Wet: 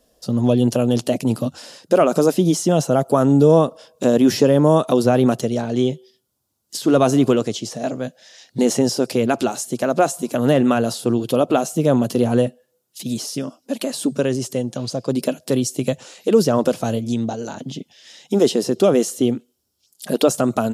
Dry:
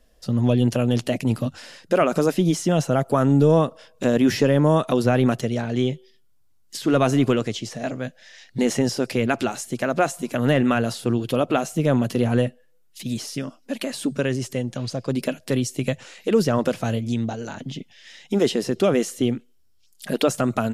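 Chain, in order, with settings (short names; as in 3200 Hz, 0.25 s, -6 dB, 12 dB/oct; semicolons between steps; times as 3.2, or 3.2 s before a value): HPF 240 Hz 6 dB/oct; bell 2000 Hz -11 dB 1.3 oct; gain +6.5 dB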